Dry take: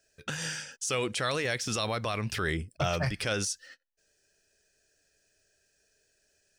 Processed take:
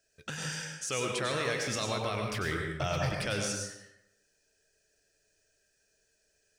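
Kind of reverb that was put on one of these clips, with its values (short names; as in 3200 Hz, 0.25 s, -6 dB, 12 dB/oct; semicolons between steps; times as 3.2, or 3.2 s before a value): plate-style reverb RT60 0.86 s, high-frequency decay 0.65×, pre-delay 85 ms, DRR 1 dB; gain -4 dB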